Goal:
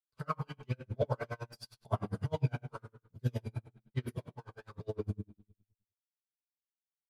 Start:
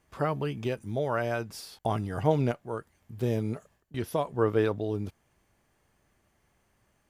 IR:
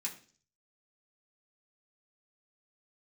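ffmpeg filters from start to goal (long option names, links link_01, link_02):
-filter_complex "[0:a]asettb=1/sr,asplit=3[link_01][link_02][link_03];[link_01]atrim=end=0.454[link_04];[link_02]atrim=start=0.45:end=1.4,asetpts=PTS-STARTPTS,afade=type=in:duration=0.004:curve=qsin,afade=type=out:start_time=0.946:duration=0.004:curve=qsin,highshelf=frequency=4300:gain=-8.5[link_05];[link_03]atrim=start=1.396[link_06];[link_04][link_05]acrossfade=duration=0.004:curve1=hsin:curve2=qsin[link_07];[link_07][link_06]acrossfade=duration=0.004:curve1=qsin:curve2=hsin,asplit=3[link_08][link_09][link_10];[link_08]afade=type=out:start_time=4.09:duration=0.02[link_11];[link_09]acompressor=threshold=-35dB:ratio=5,afade=type=in:start_time=4.09:duration=0.02,afade=type=out:start_time=4.7:duration=0.02[link_12];[link_10]afade=type=in:start_time=4.7:duration=0.02[link_13];[link_11][link_12][link_13]amix=inputs=3:normalize=0,aeval=exprs='sgn(val(0))*max(abs(val(0))-0.00398,0)':channel_layout=same,aphaser=in_gain=1:out_gain=1:delay=1.3:decay=0.58:speed=1:type=sinusoidal[link_14];[1:a]atrim=start_sample=2205,asetrate=26460,aresample=44100[link_15];[link_14][link_15]afir=irnorm=-1:irlink=0,aeval=exprs='val(0)*pow(10,-37*(0.5-0.5*cos(2*PI*9.8*n/s))/20)':channel_layout=same,volume=-6dB"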